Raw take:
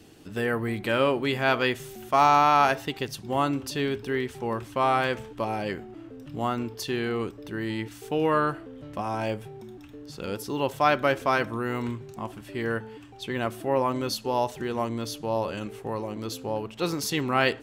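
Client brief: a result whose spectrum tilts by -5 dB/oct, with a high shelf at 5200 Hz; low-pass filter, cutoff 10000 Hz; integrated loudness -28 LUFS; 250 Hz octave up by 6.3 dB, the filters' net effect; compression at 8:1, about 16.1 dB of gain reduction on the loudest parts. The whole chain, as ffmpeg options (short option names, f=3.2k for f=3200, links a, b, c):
-af "lowpass=10k,equalizer=f=250:t=o:g=7.5,highshelf=f=5.2k:g=6,acompressor=threshold=-32dB:ratio=8,volume=8.5dB"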